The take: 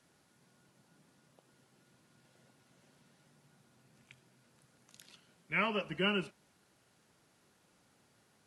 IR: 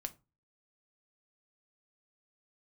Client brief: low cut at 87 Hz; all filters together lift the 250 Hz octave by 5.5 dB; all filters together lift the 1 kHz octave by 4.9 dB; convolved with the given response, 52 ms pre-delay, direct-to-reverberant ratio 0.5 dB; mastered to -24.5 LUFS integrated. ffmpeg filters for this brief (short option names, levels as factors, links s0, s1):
-filter_complex "[0:a]highpass=87,equalizer=f=250:t=o:g=8,equalizer=f=1000:t=o:g=6,asplit=2[s0][s1];[1:a]atrim=start_sample=2205,adelay=52[s2];[s1][s2]afir=irnorm=-1:irlink=0,volume=1.19[s3];[s0][s3]amix=inputs=2:normalize=0,volume=1.58"